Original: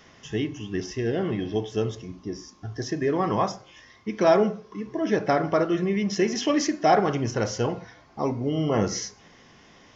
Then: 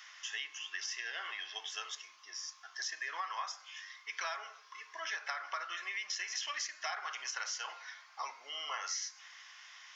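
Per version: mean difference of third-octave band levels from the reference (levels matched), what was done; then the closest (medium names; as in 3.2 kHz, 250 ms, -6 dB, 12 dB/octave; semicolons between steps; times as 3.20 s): 16.0 dB: high-pass 1.2 kHz 24 dB/octave; compression 10:1, threshold -38 dBFS, peak gain reduction 13 dB; trim +2.5 dB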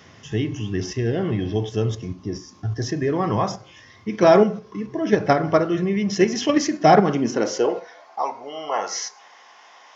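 3.0 dB: in parallel at +1 dB: level held to a coarse grid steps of 20 dB; on the sum: high-pass sweep 93 Hz -> 830 Hz, 6.59–8.22 s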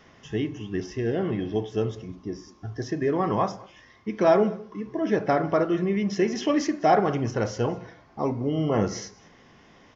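1.5 dB: treble shelf 3.6 kHz -8.5 dB; on a send: delay 203 ms -23 dB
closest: third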